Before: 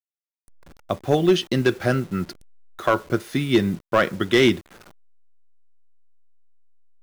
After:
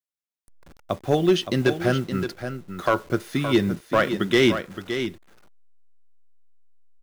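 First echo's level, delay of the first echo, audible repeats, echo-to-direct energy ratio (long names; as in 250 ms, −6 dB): −9.0 dB, 568 ms, 1, −9.0 dB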